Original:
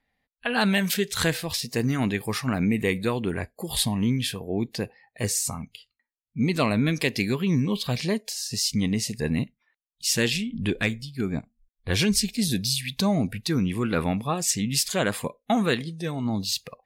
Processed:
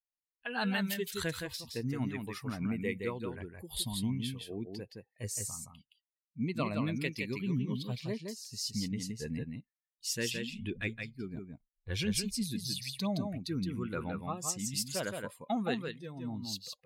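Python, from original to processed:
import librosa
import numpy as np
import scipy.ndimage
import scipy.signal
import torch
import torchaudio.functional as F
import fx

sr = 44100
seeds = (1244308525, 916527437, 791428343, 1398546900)

p1 = fx.bin_expand(x, sr, power=1.5)
p2 = p1 + fx.echo_single(p1, sr, ms=168, db=-5.0, dry=0)
y = p2 * librosa.db_to_amplitude(-8.5)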